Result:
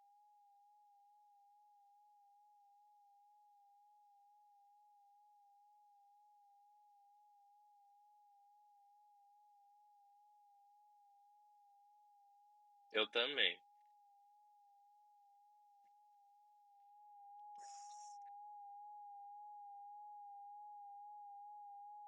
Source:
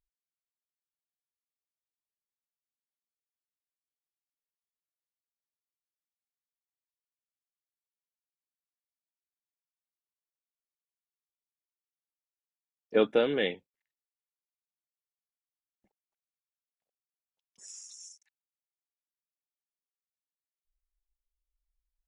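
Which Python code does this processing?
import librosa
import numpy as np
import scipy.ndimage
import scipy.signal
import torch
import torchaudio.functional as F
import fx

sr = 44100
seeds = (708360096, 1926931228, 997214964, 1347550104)

y = x + 10.0 ** (-55.0 / 20.0) * np.sin(2.0 * np.pi * 820.0 * np.arange(len(x)) / sr)
y = fx.filter_sweep_bandpass(y, sr, from_hz=4700.0, to_hz=730.0, start_s=16.66, end_s=17.7, q=0.91)
y = fx.wow_flutter(y, sr, seeds[0], rate_hz=2.1, depth_cents=24.0)
y = y * 10.0 ** (2.5 / 20.0)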